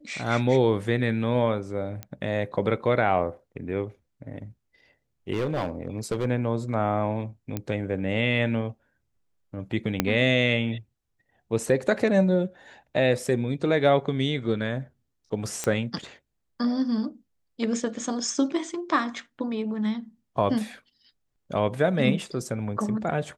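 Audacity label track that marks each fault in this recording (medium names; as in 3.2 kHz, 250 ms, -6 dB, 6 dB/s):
2.030000	2.030000	pop -19 dBFS
5.320000	6.260000	clipped -22 dBFS
7.570000	7.570000	pop -15 dBFS
10.000000	10.000000	pop -6 dBFS
15.640000	15.640000	pop -12 dBFS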